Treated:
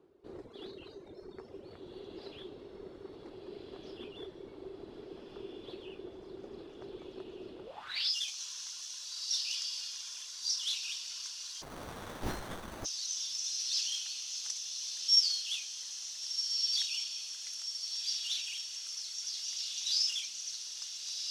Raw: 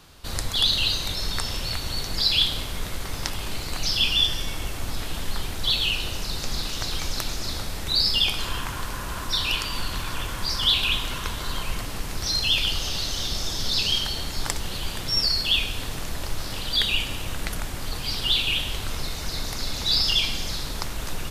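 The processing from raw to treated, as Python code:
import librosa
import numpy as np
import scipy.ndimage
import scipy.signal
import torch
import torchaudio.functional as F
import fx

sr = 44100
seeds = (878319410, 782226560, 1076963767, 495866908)

p1 = fx.cvsd(x, sr, bps=64000)
p2 = fx.quant_companded(p1, sr, bits=4)
p3 = p1 + F.gain(torch.from_numpy(p2), -5.0).numpy()
p4 = fx.dereverb_blind(p3, sr, rt60_s=2.0)
p5 = fx.echo_diffused(p4, sr, ms=1482, feedback_pct=57, wet_db=-4)
p6 = fx.filter_sweep_bandpass(p5, sr, from_hz=380.0, to_hz=5900.0, start_s=7.63, end_s=8.15, q=6.6)
y = fx.running_max(p6, sr, window=17, at=(11.61, 12.84), fade=0.02)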